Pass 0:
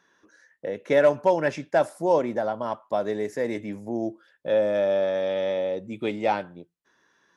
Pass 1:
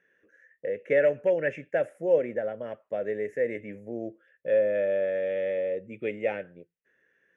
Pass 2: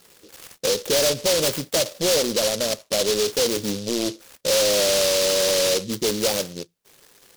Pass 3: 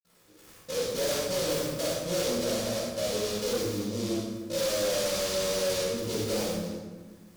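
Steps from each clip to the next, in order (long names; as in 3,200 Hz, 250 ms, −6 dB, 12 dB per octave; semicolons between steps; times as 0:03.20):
drawn EQ curve 130 Hz 0 dB, 320 Hz −3 dB, 500 Hz +8 dB, 1,000 Hz −18 dB, 1,800 Hz +7 dB, 2,800 Hz +2 dB, 4,400 Hz −26 dB, 6,600 Hz −11 dB; level −6 dB
in parallel at +2 dB: downward compressor, threshold −31 dBFS, peak gain reduction 13.5 dB; on the sum: soft clipping −25.5 dBFS, distortion −8 dB; short delay modulated by noise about 4,500 Hz, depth 0.2 ms; level +8.5 dB
convolution reverb RT60 1.5 s, pre-delay 49 ms; hard clipping −16.5 dBFS, distortion −17 dB; level −7 dB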